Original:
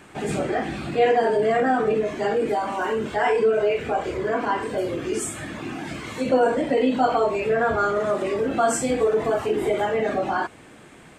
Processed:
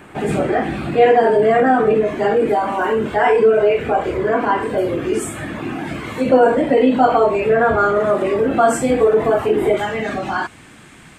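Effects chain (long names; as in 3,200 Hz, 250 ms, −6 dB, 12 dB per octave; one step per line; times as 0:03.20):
parametric band 5,900 Hz −9.5 dB 1.5 octaves, from 0:09.77 510 Hz
level +7 dB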